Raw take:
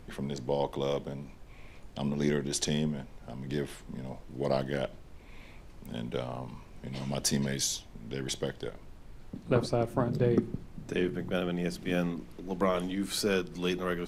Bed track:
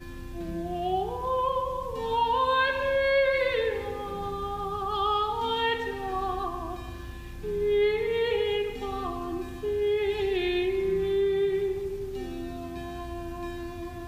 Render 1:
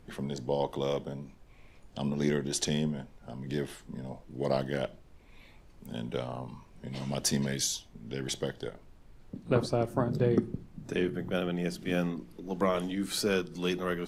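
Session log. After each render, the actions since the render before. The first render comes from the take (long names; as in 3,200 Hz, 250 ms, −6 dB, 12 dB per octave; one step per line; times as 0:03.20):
noise reduction from a noise print 6 dB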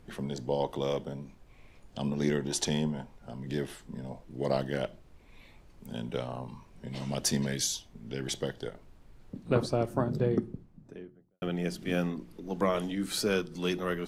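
0:02.41–0:03.15: parametric band 900 Hz +8 dB 0.45 octaves
0:09.89–0:11.42: fade out and dull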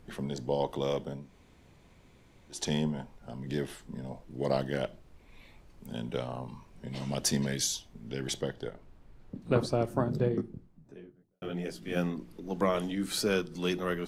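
0:01.25–0:02.60: fill with room tone, crossfade 0.24 s
0:08.41–0:09.42: high-shelf EQ 3,800 Hz −7 dB
0:10.28–0:11.95: micro pitch shift up and down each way 54 cents → 40 cents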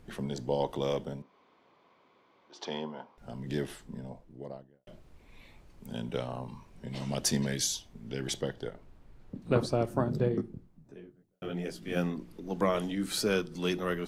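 0:01.22–0:03.18: loudspeaker in its box 390–4,300 Hz, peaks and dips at 1,100 Hz +8 dB, 1,800 Hz −5 dB, 2,600 Hz −5 dB, 3,900 Hz −5 dB
0:03.68–0:04.87: fade out and dull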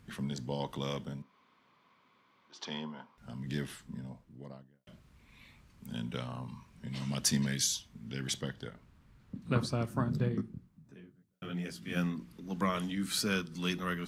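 high-pass filter 55 Hz
flat-topped bell 510 Hz −9 dB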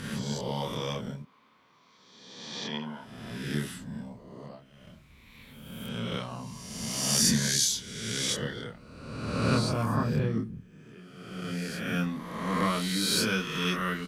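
peak hold with a rise ahead of every peak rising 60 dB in 1.44 s
double-tracking delay 27 ms −3 dB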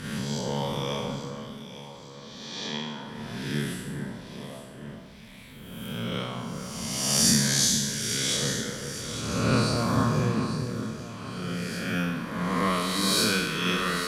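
peak hold with a decay on every bin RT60 1.14 s
delay that swaps between a low-pass and a high-pass 423 ms, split 1,900 Hz, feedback 67%, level −7 dB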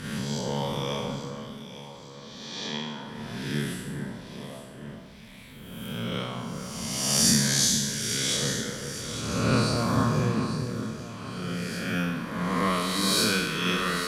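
no processing that can be heard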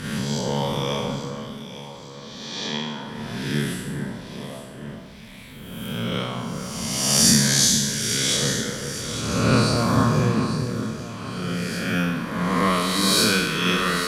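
level +5 dB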